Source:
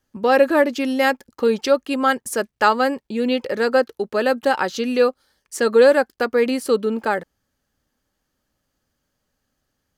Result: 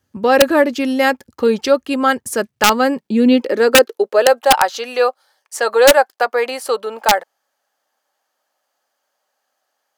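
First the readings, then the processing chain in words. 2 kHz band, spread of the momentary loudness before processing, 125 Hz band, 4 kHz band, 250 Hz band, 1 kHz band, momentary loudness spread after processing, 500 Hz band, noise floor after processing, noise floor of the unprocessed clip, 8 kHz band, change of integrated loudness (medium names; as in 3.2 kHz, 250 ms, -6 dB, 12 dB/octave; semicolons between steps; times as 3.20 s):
+4.5 dB, 8 LU, no reading, +9.5 dB, +4.5 dB, +5.5 dB, 9 LU, +3.0 dB, -73 dBFS, -76 dBFS, +11.5 dB, +4.5 dB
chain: high-pass sweep 80 Hz -> 720 Hz, 2.20–4.48 s; integer overflow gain 4 dB; trim +3 dB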